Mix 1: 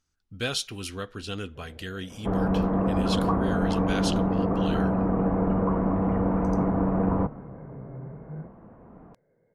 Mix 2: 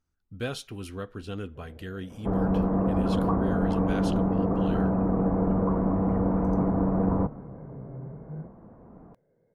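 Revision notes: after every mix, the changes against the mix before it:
master: add peaking EQ 5.4 kHz -12 dB 2.9 oct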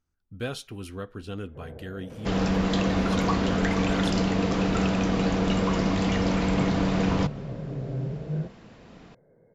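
first sound +9.0 dB; second sound: remove inverse Chebyshev low-pass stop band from 4.8 kHz, stop band 70 dB

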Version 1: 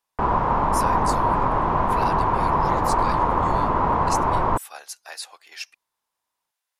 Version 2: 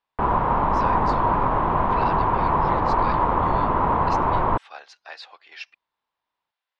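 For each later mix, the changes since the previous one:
master: add low-pass 4 kHz 24 dB/octave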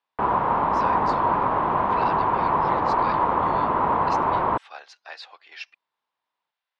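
master: add high-pass 230 Hz 6 dB/octave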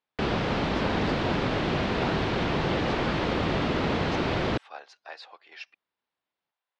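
background: remove resonant low-pass 1 kHz, resonance Q 6.3; master: add tilt shelf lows +5.5 dB, about 690 Hz

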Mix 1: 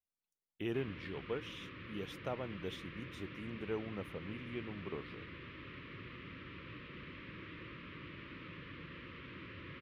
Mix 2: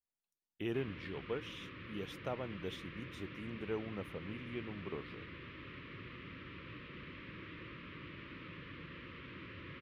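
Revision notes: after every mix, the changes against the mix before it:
no change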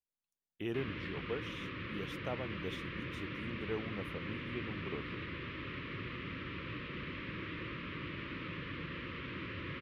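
background +7.0 dB

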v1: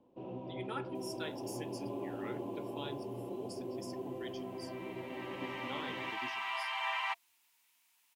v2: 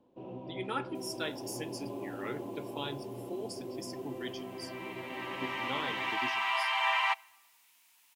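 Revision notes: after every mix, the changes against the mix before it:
speech +5.5 dB; second sound +6.0 dB; reverb: on, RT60 1.1 s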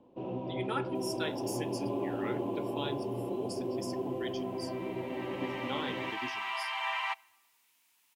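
first sound +6.5 dB; second sound -5.0 dB

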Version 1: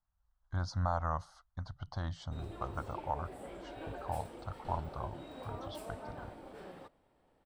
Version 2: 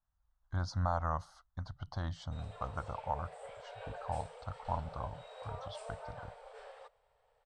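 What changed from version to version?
background: add brick-wall FIR band-pass 420–9300 Hz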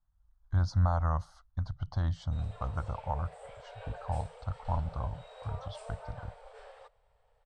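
speech: add bass shelf 150 Hz +11.5 dB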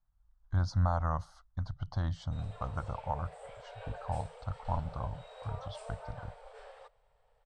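master: add peaking EQ 71 Hz -7.5 dB 0.45 oct

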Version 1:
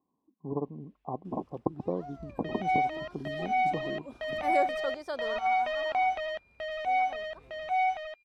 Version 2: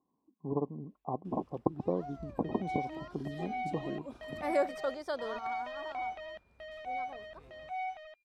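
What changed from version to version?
second sound -10.5 dB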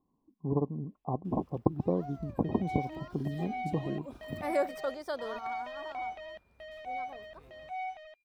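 speech: remove high-pass 300 Hz 6 dB/octave; second sound: add peaking EQ 1.3 kHz -5.5 dB 0.39 oct; master: remove low-pass 9.5 kHz 12 dB/octave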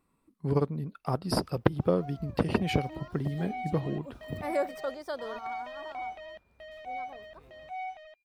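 speech: remove rippled Chebyshev low-pass 1.1 kHz, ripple 6 dB

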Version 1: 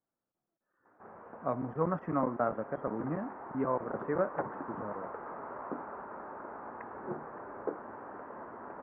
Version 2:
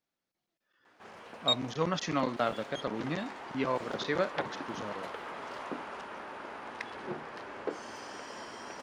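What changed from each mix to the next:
master: remove inverse Chebyshev low-pass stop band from 3.6 kHz, stop band 50 dB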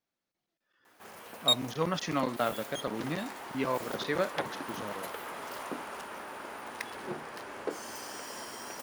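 background: remove distance through air 110 m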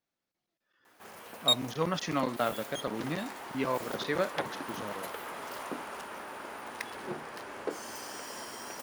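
no change

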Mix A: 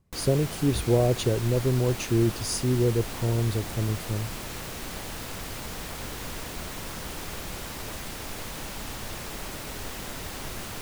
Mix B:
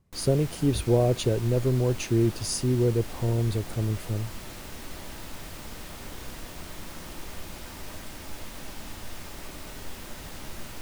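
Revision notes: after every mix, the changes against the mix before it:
background -9.5 dB; reverb: on, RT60 0.80 s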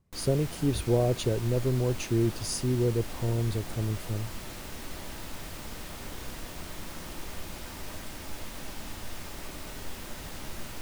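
speech -3.0 dB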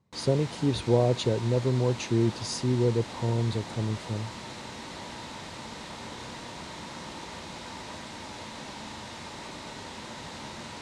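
master: add cabinet simulation 100–8100 Hz, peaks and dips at 120 Hz +3 dB, 220 Hz +4 dB, 500 Hz +3 dB, 930 Hz +9 dB, 2 kHz +3 dB, 3.9 kHz +6 dB

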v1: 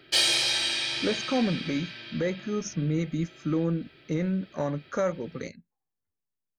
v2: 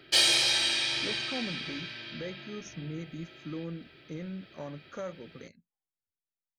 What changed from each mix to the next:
speech -11.5 dB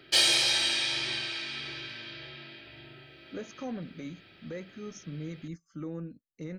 speech: entry +2.30 s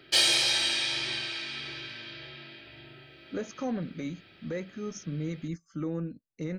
speech +5.0 dB

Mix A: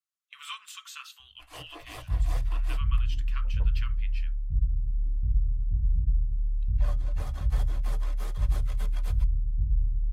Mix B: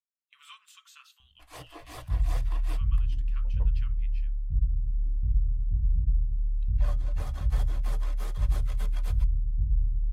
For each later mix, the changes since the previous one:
speech -10.5 dB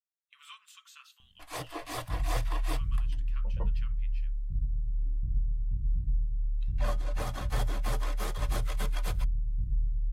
first sound +7.5 dB; master: add peaking EQ 65 Hz -11.5 dB 0.86 oct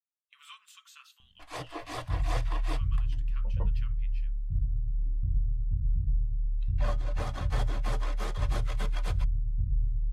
first sound: add distance through air 53 m; second sound: add peaking EQ 92 Hz +7.5 dB 0.9 oct

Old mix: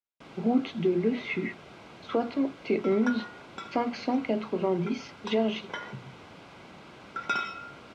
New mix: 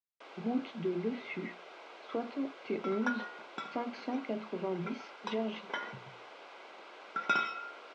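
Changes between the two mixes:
speech -8.5 dB; first sound: add high-pass 410 Hz 24 dB/octave; master: add distance through air 74 m

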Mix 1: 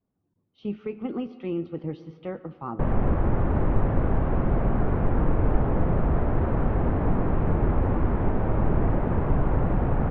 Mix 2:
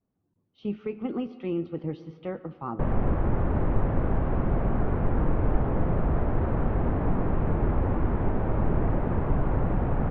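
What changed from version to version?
background: send -11.0 dB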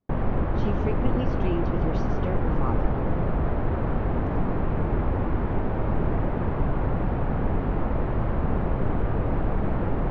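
background: entry -2.70 s; master: remove distance through air 300 m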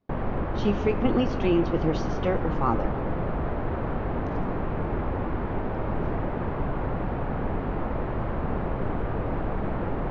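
speech +8.0 dB; master: add bass shelf 220 Hz -5.5 dB

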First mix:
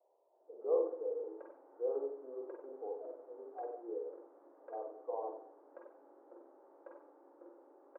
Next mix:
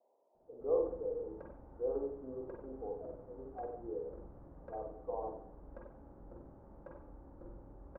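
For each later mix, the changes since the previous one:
background: remove distance through air 270 m; master: remove steep high-pass 320 Hz 48 dB/octave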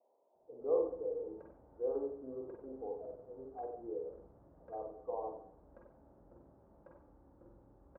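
background -7.0 dB; master: add high-pass 57 Hz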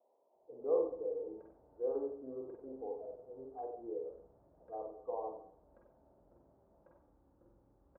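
background -6.5 dB

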